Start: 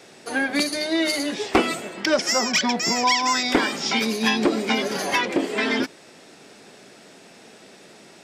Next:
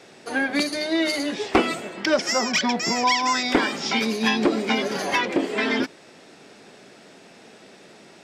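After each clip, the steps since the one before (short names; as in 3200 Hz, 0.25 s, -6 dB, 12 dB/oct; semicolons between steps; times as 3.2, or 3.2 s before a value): high shelf 7600 Hz -8.5 dB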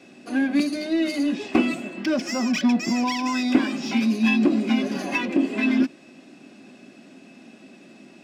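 notch comb 450 Hz; in parallel at -6 dB: overloaded stage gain 27 dB; on the sum: small resonant body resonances 250/2600 Hz, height 14 dB, ringing for 30 ms; gain -8.5 dB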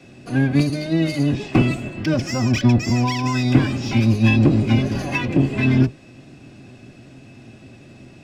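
octaver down 1 oct, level +2 dB; gain +1.5 dB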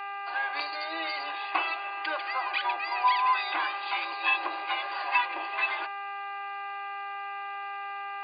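buzz 400 Hz, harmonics 7, -32 dBFS -6 dB/oct; brick-wall FIR band-pass 310–4800 Hz; resonant low shelf 630 Hz -14 dB, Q 3; gain -3.5 dB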